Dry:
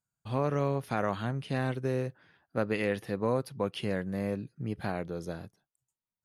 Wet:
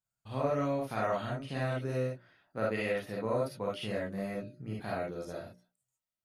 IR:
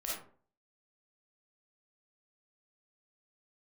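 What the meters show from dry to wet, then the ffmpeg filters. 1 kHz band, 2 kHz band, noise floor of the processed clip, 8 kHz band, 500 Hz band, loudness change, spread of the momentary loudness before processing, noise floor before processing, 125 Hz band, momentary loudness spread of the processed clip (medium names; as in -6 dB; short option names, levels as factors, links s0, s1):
-1.0 dB, -1.5 dB, under -85 dBFS, -1.5 dB, -1.0 dB, -2.0 dB, 8 LU, under -85 dBFS, -4.0 dB, 10 LU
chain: -filter_complex "[0:a]bandreject=f=60:t=h:w=6,bandreject=f=120:t=h:w=6,bandreject=f=180:t=h:w=6,bandreject=f=240:t=h:w=6,bandreject=f=300:t=h:w=6,bandreject=f=360:t=h:w=6,bandreject=f=420:t=h:w=6,bandreject=f=480:t=h:w=6,bandreject=f=540:t=h:w=6,bandreject=f=600:t=h:w=6[s0];[1:a]atrim=start_sample=2205,atrim=end_sample=3528[s1];[s0][s1]afir=irnorm=-1:irlink=0,volume=0.794"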